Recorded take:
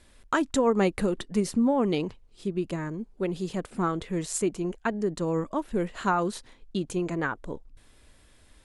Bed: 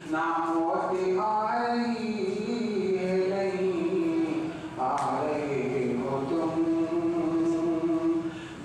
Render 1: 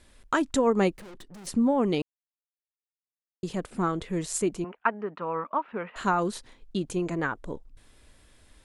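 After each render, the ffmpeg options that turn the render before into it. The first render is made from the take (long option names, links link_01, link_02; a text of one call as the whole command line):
ffmpeg -i in.wav -filter_complex "[0:a]asettb=1/sr,asplit=3[link_01][link_02][link_03];[link_01]atrim=end=0.974[link_04];[link_02]atrim=start=0.97:end=1.47,asetpts=PTS-STARTPTS,afade=type=in:duration=0.004:curve=qsin,afade=type=out:start_time=0.496:duration=0.004:curve=qsin,aeval=exprs='(tanh(158*val(0)+0.35)-tanh(0.35))/158':channel_layout=same[link_05];[link_03]atrim=start=1.466[link_06];[link_04][link_05]acrossfade=duration=0.004:curve1=hsin:curve2=qsin[link_07];[link_07][link_06]acrossfade=duration=0.004:curve1=qsin:curve2=hsin,asettb=1/sr,asplit=3[link_08][link_09][link_10];[link_08]atrim=end=4.644[link_11];[link_09]atrim=start=4.64:end=5.96,asetpts=PTS-STARTPTS,afade=type=in:duration=0.004:curve=qsin,afade=type=out:start_time=1.316:duration=0.004:curve=qsin,highpass=310,equalizer=frequency=340:width_type=q:width=4:gain=-10,equalizer=frequency=530:width_type=q:width=4:gain=-3,equalizer=frequency=940:width_type=q:width=4:gain=6,equalizer=frequency=1300:width_type=q:width=4:gain=10,equalizer=frequency=2500:width_type=q:width=4:gain=5,lowpass=frequency=2700:width=0.5412,lowpass=frequency=2700:width=1.3066[link_12];[link_10]atrim=start=5.956[link_13];[link_11][link_12]acrossfade=duration=0.004:curve1=hsin:curve2=qsin[link_14];[link_14][link_13]acrossfade=duration=0.004:curve1=qsin:curve2=hsin,asplit=3[link_15][link_16][link_17];[link_15]atrim=end=2.02,asetpts=PTS-STARTPTS,afade=type=out:start_time=2.016:duration=0.004:curve=hsin[link_18];[link_16]atrim=start=2.02:end=3.43,asetpts=PTS-STARTPTS,volume=0[link_19];[link_17]atrim=start=3.43,asetpts=PTS-STARTPTS,afade=type=in:duration=0.004:curve=hsin[link_20];[link_18][link_19][link_20]concat=n=3:v=0:a=1" out.wav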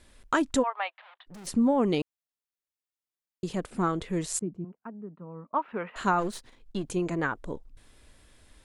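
ffmpeg -i in.wav -filter_complex "[0:a]asplit=3[link_01][link_02][link_03];[link_01]afade=type=out:start_time=0.62:duration=0.02[link_04];[link_02]asuperpass=centerf=1600:order=12:qfactor=0.52,afade=type=in:start_time=0.62:duration=0.02,afade=type=out:start_time=1.26:duration=0.02[link_05];[link_03]afade=type=in:start_time=1.26:duration=0.02[link_06];[link_04][link_05][link_06]amix=inputs=3:normalize=0,asettb=1/sr,asplit=3[link_07][link_08][link_09];[link_07]atrim=end=4.394[link_10];[link_08]atrim=start=4.39:end=5.54,asetpts=PTS-STARTPTS,afade=type=in:duration=0.004:curve=qsin,afade=type=out:start_time=1.146:duration=0.004:curve=qsin,bandpass=frequency=170:width_type=q:width=1.8[link_11];[link_09]atrim=start=5.536[link_12];[link_10][link_11]acrossfade=duration=0.004:curve1=hsin:curve2=qsin[link_13];[link_13][link_12]acrossfade=duration=0.004:curve1=qsin:curve2=hsin,asplit=3[link_14][link_15][link_16];[link_14]afade=type=out:start_time=6.19:duration=0.02[link_17];[link_15]aeval=exprs='if(lt(val(0),0),0.447*val(0),val(0))':channel_layout=same,afade=type=in:start_time=6.19:duration=0.02,afade=type=out:start_time=6.82:duration=0.02[link_18];[link_16]afade=type=in:start_time=6.82:duration=0.02[link_19];[link_17][link_18][link_19]amix=inputs=3:normalize=0" out.wav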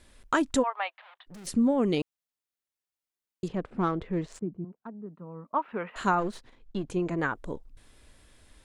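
ffmpeg -i in.wav -filter_complex "[0:a]asettb=1/sr,asplit=3[link_01][link_02][link_03];[link_01]atrim=end=1.354[link_04];[link_02]atrim=start=1.35:end=1.97,asetpts=PTS-STARTPTS,afade=type=in:duration=0.004:curve=qsin,afade=type=out:start_time=0.616:duration=0.004:curve=qsin,equalizer=frequency=900:width_type=o:width=0.77:gain=-6[link_05];[link_03]atrim=start=1.966[link_06];[link_04][link_05]acrossfade=duration=0.004:curve1=hsin:curve2=qsin[link_07];[link_07][link_06]acrossfade=duration=0.004:curve1=qsin:curve2=hsin,asettb=1/sr,asplit=3[link_08][link_09][link_10];[link_08]atrim=end=3.484[link_11];[link_09]atrim=start=3.48:end=5.06,asetpts=PTS-STARTPTS,afade=type=in:duration=0.004:curve=qsin,afade=type=out:start_time=1.576:duration=0.004:curve=qsin,adynamicsmooth=sensitivity=1.5:basefreq=2000[link_12];[link_10]atrim=start=5.056[link_13];[link_11][link_12]acrossfade=duration=0.004:curve1=hsin:curve2=qsin[link_14];[link_14][link_13]acrossfade=duration=0.004:curve1=qsin:curve2=hsin,asettb=1/sr,asplit=3[link_15][link_16][link_17];[link_15]atrim=end=6.154[link_18];[link_16]atrim=start=6.15:end=7.18,asetpts=PTS-STARTPTS,afade=type=in:duration=0.004:curve=qsin,afade=type=out:start_time=1.026:duration=0.004:curve=qsin,lowpass=frequency=2900:poles=1[link_19];[link_17]atrim=start=7.176[link_20];[link_18][link_19]acrossfade=duration=0.004:curve1=hsin:curve2=qsin[link_21];[link_21][link_20]acrossfade=duration=0.004:curve1=qsin:curve2=hsin" out.wav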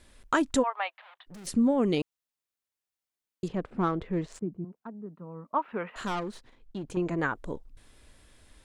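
ffmpeg -i in.wav -filter_complex "[0:a]asettb=1/sr,asplit=3[link_01][link_02][link_03];[link_01]atrim=end=5.954[link_04];[link_02]atrim=start=5.95:end=6.97,asetpts=PTS-STARTPTS,afade=type=in:duration=0.004:curve=qsin,afade=type=out:start_time=1.016:duration=0.004:curve=qsin,aeval=exprs='(tanh(25.1*val(0)+0.4)-tanh(0.4))/25.1':channel_layout=same[link_05];[link_03]atrim=start=6.966[link_06];[link_04][link_05]acrossfade=duration=0.004:curve1=hsin:curve2=qsin[link_07];[link_07][link_06]acrossfade=duration=0.004:curve1=qsin:curve2=hsin" out.wav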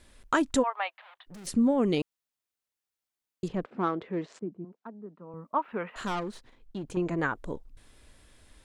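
ffmpeg -i in.wav -filter_complex "[0:a]asettb=1/sr,asplit=3[link_01][link_02][link_03];[link_01]atrim=end=3.644[link_04];[link_02]atrim=start=3.64:end=5.34,asetpts=PTS-STARTPTS,afade=type=in:duration=0.004:curve=qsin,afade=type=out:start_time=1.696:duration=0.004:curve=qsin,highpass=230,lowpass=5400[link_05];[link_03]atrim=start=5.336[link_06];[link_04][link_05]acrossfade=duration=0.004:curve1=hsin:curve2=qsin[link_07];[link_07][link_06]acrossfade=duration=0.004:curve1=qsin:curve2=hsin" out.wav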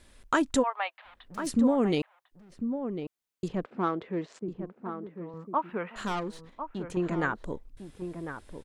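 ffmpeg -i in.wav -filter_complex "[0:a]asplit=2[link_01][link_02];[link_02]adelay=1050,volume=-8dB,highshelf=frequency=4000:gain=-23.6[link_03];[link_01][link_03]amix=inputs=2:normalize=0" out.wav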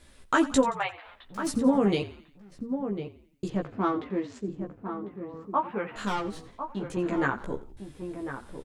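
ffmpeg -i in.wav -filter_complex "[0:a]asplit=2[link_01][link_02];[link_02]adelay=15,volume=-2.5dB[link_03];[link_01][link_03]amix=inputs=2:normalize=0,asplit=5[link_04][link_05][link_06][link_07][link_08];[link_05]adelay=87,afreqshift=-43,volume=-16.5dB[link_09];[link_06]adelay=174,afreqshift=-86,volume=-23.2dB[link_10];[link_07]adelay=261,afreqshift=-129,volume=-30dB[link_11];[link_08]adelay=348,afreqshift=-172,volume=-36.7dB[link_12];[link_04][link_09][link_10][link_11][link_12]amix=inputs=5:normalize=0" out.wav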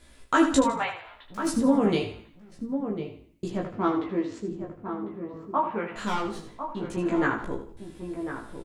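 ffmpeg -i in.wav -filter_complex "[0:a]asplit=2[link_01][link_02];[link_02]adelay=18,volume=-5dB[link_03];[link_01][link_03]amix=inputs=2:normalize=0,asplit=2[link_04][link_05];[link_05]aecho=0:1:77|154|231:0.335|0.104|0.0322[link_06];[link_04][link_06]amix=inputs=2:normalize=0" out.wav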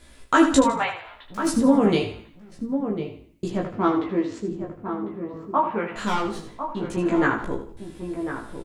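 ffmpeg -i in.wav -af "volume=4dB" out.wav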